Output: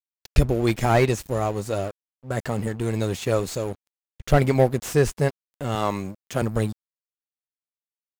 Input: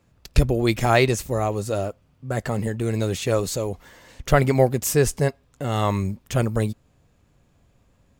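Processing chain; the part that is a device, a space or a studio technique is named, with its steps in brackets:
0:05.75–0:06.42: high-pass filter 170 Hz 12 dB per octave
early transistor amplifier (dead-zone distortion −38 dBFS; slew-rate limiting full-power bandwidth 190 Hz)

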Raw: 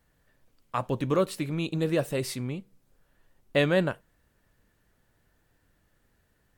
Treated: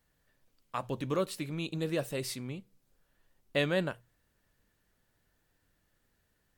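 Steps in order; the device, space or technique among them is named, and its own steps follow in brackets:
presence and air boost (parametric band 4,500 Hz +4 dB 2 octaves; high-shelf EQ 12,000 Hz +6 dB)
mains-hum notches 60/120 Hz
level −6.5 dB

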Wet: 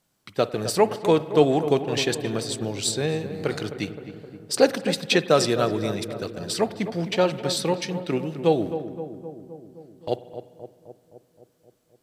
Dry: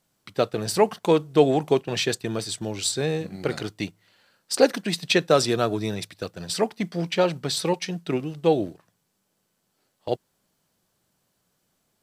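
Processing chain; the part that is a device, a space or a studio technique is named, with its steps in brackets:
dub delay into a spring reverb (feedback echo with a low-pass in the loop 260 ms, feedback 69%, low-pass 1,200 Hz, level −10 dB; spring reverb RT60 1.6 s, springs 49 ms, chirp 30 ms, DRR 15.5 dB)

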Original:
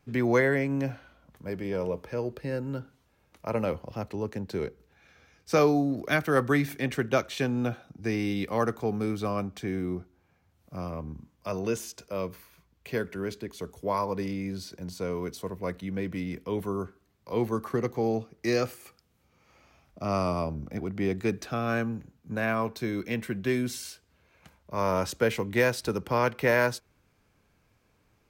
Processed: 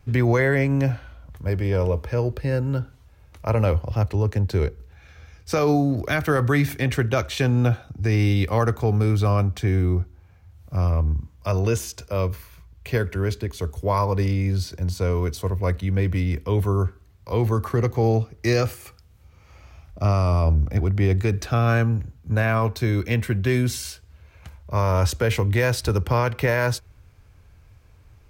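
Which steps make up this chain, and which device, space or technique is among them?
car stereo with a boomy subwoofer (low shelf with overshoot 130 Hz +12.5 dB, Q 1.5; brickwall limiter −18 dBFS, peak gain reduction 7.5 dB)
level +7 dB

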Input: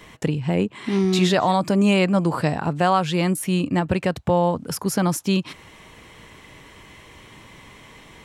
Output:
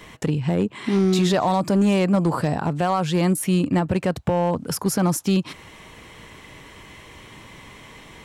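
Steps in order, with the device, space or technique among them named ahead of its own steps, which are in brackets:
dynamic equaliser 2,600 Hz, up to −5 dB, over −36 dBFS, Q 0.85
limiter into clipper (brickwall limiter −12.5 dBFS, peak gain reduction 5 dB; hard clipping −14.5 dBFS, distortion −24 dB)
level +2 dB

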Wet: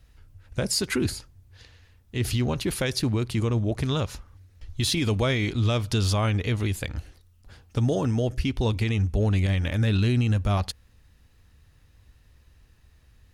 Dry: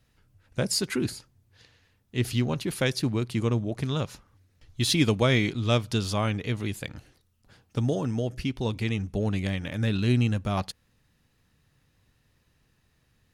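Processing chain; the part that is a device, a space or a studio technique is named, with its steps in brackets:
car stereo with a boomy subwoofer (low shelf with overshoot 100 Hz +9.5 dB, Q 1.5; brickwall limiter −19.5 dBFS, peak gain reduction 10.5 dB)
level +4.5 dB

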